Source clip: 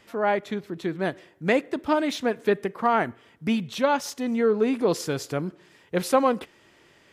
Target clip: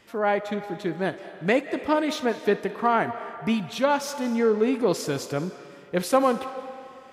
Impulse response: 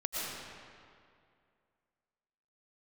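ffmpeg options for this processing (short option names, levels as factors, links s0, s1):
-filter_complex "[0:a]asplit=2[s0][s1];[s1]bass=f=250:g=-14,treble=f=4000:g=1[s2];[1:a]atrim=start_sample=2205,adelay=61[s3];[s2][s3]afir=irnorm=-1:irlink=0,volume=0.168[s4];[s0][s4]amix=inputs=2:normalize=0"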